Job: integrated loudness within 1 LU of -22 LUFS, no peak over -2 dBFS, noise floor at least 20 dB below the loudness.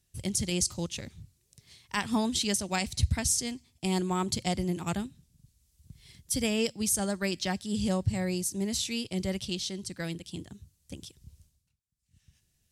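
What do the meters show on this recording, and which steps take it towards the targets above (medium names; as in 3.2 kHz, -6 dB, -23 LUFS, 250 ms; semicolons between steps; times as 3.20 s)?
loudness -30.5 LUFS; peak level -13.0 dBFS; loudness target -22.0 LUFS
-> trim +8.5 dB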